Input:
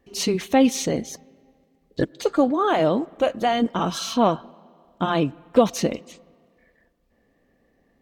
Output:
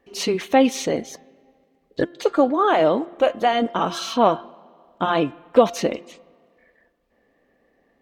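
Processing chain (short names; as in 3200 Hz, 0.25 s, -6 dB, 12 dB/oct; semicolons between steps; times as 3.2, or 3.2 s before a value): tone controls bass -10 dB, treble -7 dB; de-hum 347.8 Hz, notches 11; gain +3.5 dB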